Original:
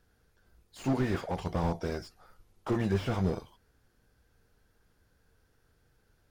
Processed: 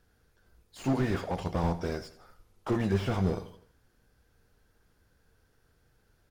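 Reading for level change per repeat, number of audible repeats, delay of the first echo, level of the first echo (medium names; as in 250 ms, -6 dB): -7.0 dB, 3, 82 ms, -15.5 dB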